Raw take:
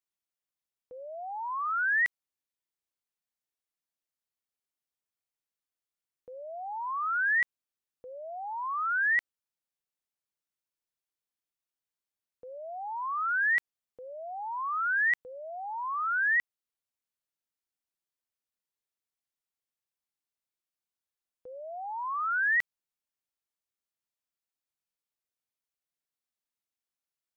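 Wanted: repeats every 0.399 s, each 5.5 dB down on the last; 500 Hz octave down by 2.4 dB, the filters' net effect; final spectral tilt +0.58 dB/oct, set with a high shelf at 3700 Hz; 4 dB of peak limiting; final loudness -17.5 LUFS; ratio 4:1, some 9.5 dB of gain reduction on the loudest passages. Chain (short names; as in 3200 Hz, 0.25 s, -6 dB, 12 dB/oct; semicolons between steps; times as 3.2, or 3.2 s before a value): bell 500 Hz -3.5 dB; high shelf 3700 Hz +5 dB; compressor 4:1, threshold -35 dBFS; limiter -34.5 dBFS; feedback echo 0.399 s, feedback 53%, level -5.5 dB; gain +21.5 dB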